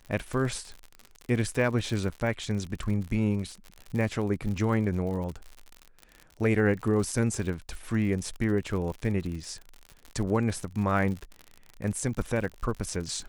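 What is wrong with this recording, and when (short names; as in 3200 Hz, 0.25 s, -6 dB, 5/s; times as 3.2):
crackle 65/s -34 dBFS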